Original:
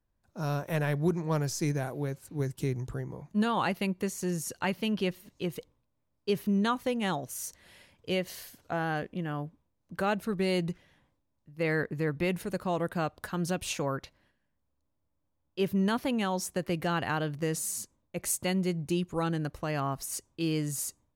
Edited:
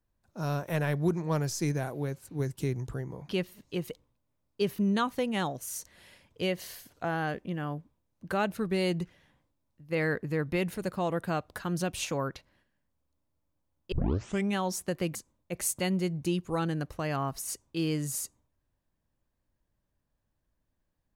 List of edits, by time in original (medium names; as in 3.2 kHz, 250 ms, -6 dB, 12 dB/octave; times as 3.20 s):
3.29–4.97 s: delete
15.60 s: tape start 0.63 s
16.83–17.79 s: delete